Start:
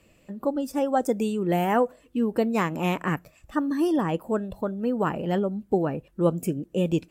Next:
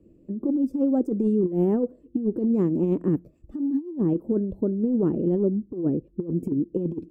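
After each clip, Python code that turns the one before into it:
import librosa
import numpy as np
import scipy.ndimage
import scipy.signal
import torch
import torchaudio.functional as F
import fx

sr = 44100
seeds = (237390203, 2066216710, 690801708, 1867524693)

y = fx.curve_eq(x, sr, hz=(150.0, 350.0, 730.0, 2200.0, 5500.0), db=(0, 9, -16, -28, -25))
y = fx.over_compress(y, sr, threshold_db=-22.0, ratio=-0.5)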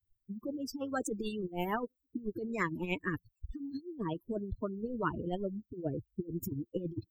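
y = fx.bin_expand(x, sr, power=3.0)
y = fx.phaser_stages(y, sr, stages=6, low_hz=510.0, high_hz=1300.0, hz=2.1, feedback_pct=30)
y = fx.spectral_comp(y, sr, ratio=10.0)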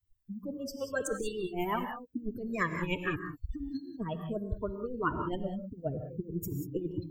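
y = fx.rev_gated(x, sr, seeds[0], gate_ms=210, shape='rising', drr_db=6.0)
y = fx.comb_cascade(y, sr, direction='falling', hz=0.57)
y = y * 10.0 ** (6.0 / 20.0)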